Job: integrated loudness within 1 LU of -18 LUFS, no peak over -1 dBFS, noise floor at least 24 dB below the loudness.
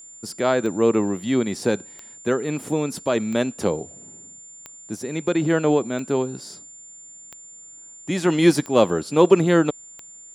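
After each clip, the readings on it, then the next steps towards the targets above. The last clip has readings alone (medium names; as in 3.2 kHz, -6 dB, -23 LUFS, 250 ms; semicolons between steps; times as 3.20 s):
clicks found 8; steady tone 7.2 kHz; tone level -41 dBFS; loudness -21.5 LUFS; peak level -2.0 dBFS; loudness target -18.0 LUFS
-> de-click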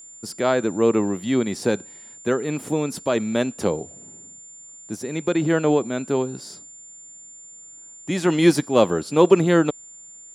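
clicks found 0; steady tone 7.2 kHz; tone level -41 dBFS
-> band-stop 7.2 kHz, Q 30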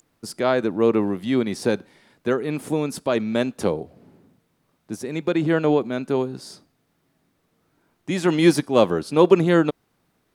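steady tone not found; loudness -21.5 LUFS; peak level -2.0 dBFS; loudness target -18.0 LUFS
-> trim +3.5 dB; peak limiter -1 dBFS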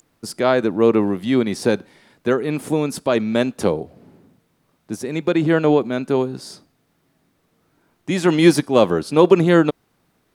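loudness -18.5 LUFS; peak level -1.0 dBFS; noise floor -66 dBFS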